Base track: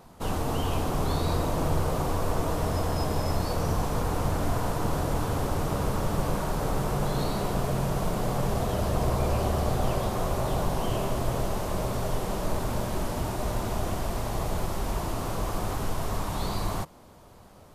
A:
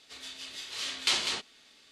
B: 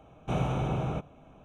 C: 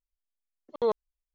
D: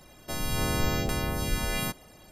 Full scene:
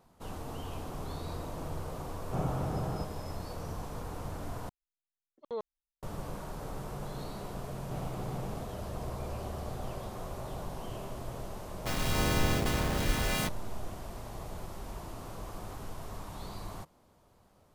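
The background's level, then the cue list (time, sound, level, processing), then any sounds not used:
base track −12.5 dB
0:02.04: mix in B −4.5 dB + flat-topped bell 3,500 Hz −11.5 dB
0:04.69: overwrite with C −11.5 dB
0:07.62: mix in B −10 dB + running median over 25 samples
0:11.57: mix in D −1 dB + hold until the input has moved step −29 dBFS
not used: A

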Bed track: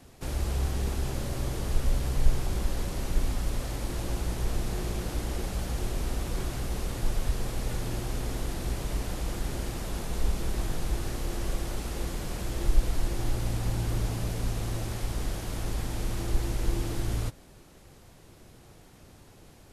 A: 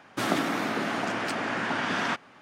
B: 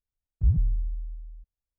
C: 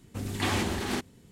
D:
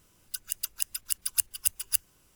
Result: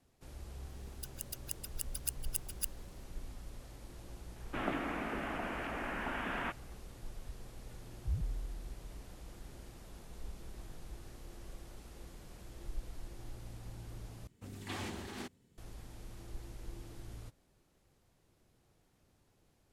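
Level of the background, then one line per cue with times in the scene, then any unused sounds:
bed track −18.5 dB
0:00.69: mix in D −11.5 dB
0:04.36: mix in A −9.5 dB + elliptic band-pass filter 100–2,800 Hz
0:07.64: mix in B −14 dB
0:14.27: overwrite with C −13.5 dB

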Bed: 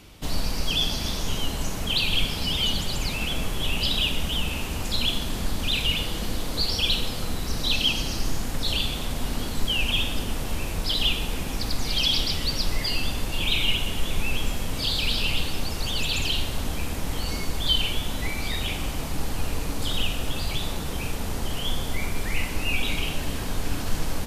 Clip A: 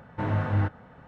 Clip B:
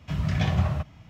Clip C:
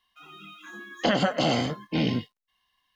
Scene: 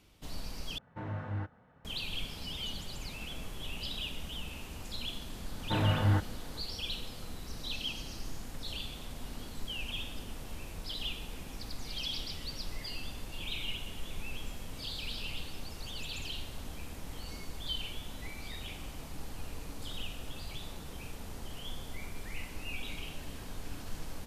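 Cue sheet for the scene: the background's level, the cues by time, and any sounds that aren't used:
bed −14.5 dB
0:00.78: overwrite with A −12 dB
0:05.52: mix in A −2 dB
not used: B, C

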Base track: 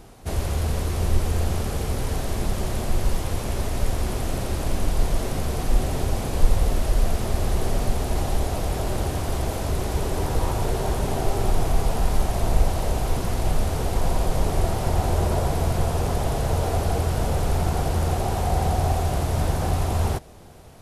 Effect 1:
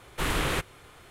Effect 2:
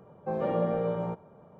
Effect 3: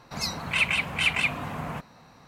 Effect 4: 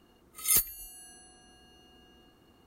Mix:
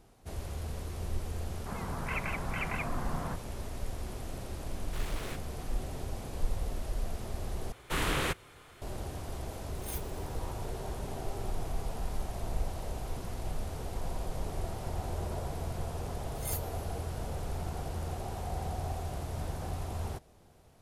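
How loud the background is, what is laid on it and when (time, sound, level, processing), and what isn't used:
base track −14 dB
0:01.55: mix in 3 −4 dB + low-pass filter 1,800 Hz 24 dB per octave
0:04.75: mix in 1 −8.5 dB + hard clipping −33 dBFS
0:07.72: overwrite with 1 −3 dB
0:09.38: mix in 4 −16.5 dB + lower of the sound and its delayed copy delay 0.34 ms
0:15.97: mix in 4 −12.5 dB + one-sided soft clipper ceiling −17.5 dBFS
not used: 2

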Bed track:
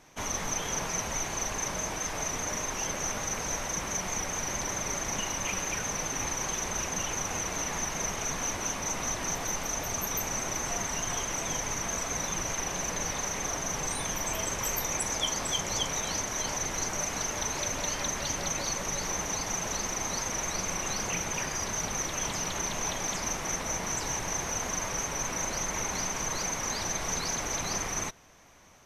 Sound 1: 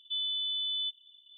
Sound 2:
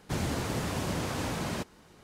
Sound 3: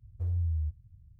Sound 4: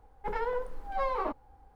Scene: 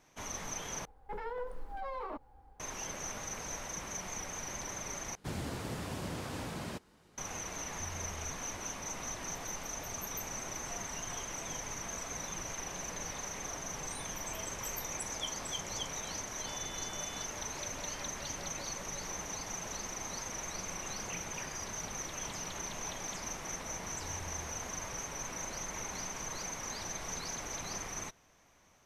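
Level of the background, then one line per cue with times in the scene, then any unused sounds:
bed track −8.5 dB
0:00.85: overwrite with 4 −2 dB + brickwall limiter −30.5 dBFS
0:05.15: overwrite with 2 −7.5 dB
0:07.60: mix in 3 −13 dB + brickwall limiter −29.5 dBFS
0:16.35: mix in 1 −17 dB
0:23.82: mix in 3 −3.5 dB + downward compressor, threshold −44 dBFS

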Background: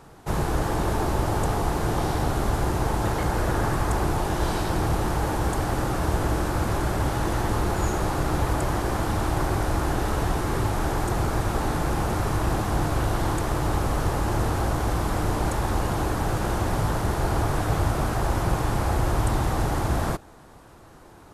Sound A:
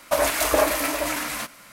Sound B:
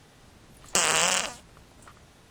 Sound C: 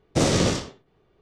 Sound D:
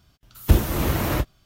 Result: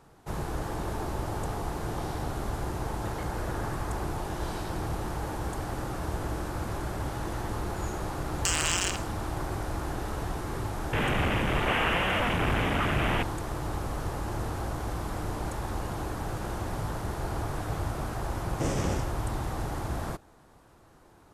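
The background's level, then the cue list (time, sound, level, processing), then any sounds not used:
background −8.5 dB
0:07.70: mix in B −4.5 dB + high-pass filter 1,100 Hz
0:10.93: mix in B −4.5 dB + linear delta modulator 16 kbit/s, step −16.5 dBFS
0:18.44: mix in C −10.5 dB + parametric band 4,100 Hz −14 dB 0.46 octaves
not used: A, D

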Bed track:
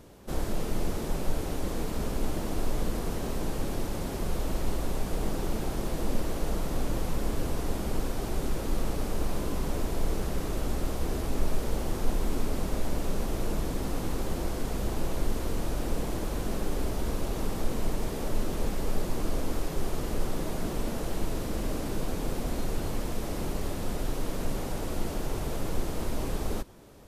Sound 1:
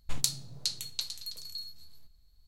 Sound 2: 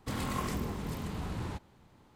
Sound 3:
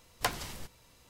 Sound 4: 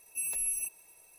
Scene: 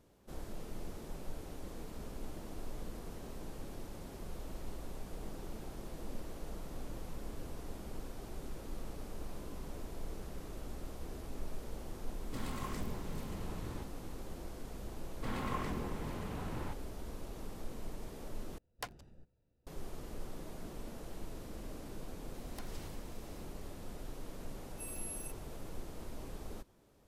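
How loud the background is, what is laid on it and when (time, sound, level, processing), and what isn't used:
bed track −14.5 dB
0:12.26: mix in 2 −8 dB
0:15.16: mix in 2 −2.5 dB + bass and treble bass −4 dB, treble −12 dB
0:18.58: overwrite with 3 −12 dB + adaptive Wiener filter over 41 samples
0:22.34: mix in 3 −1.5 dB + downward compressor 4 to 1, threshold −50 dBFS
0:24.63: mix in 4 −13 dB
not used: 1

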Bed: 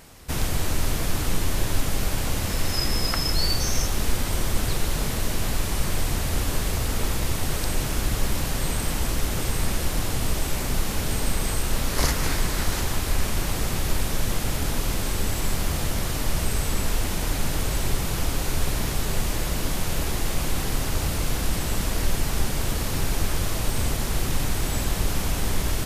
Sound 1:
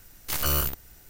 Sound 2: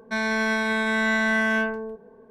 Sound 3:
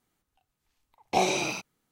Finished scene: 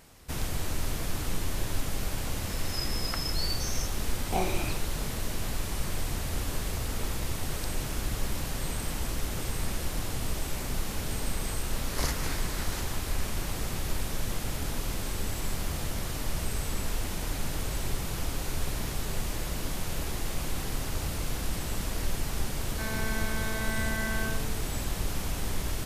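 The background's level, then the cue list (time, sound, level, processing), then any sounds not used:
bed −7 dB
0:03.19: mix in 3 −6.5 dB + bass and treble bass +7 dB, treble −11 dB
0:22.67: mix in 2 −12 dB
not used: 1

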